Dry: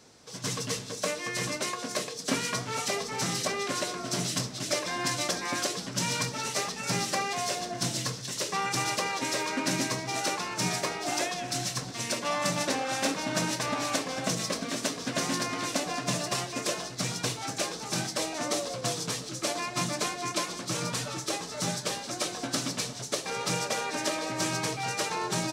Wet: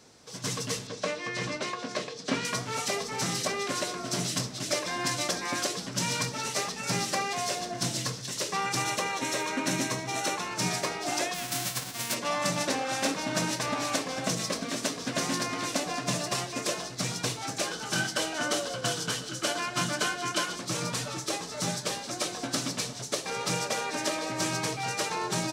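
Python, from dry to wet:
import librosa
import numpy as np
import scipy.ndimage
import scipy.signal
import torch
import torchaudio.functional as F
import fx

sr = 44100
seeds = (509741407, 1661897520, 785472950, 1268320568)

y = fx.lowpass(x, sr, hz=4700.0, slope=12, at=(0.87, 2.45))
y = fx.notch(y, sr, hz=4800.0, q=7.5, at=(8.82, 10.51))
y = fx.envelope_flatten(y, sr, power=0.3, at=(11.33, 12.13), fade=0.02)
y = fx.small_body(y, sr, hz=(1500.0, 3000.0), ring_ms=25, db=14, at=(17.66, 20.56))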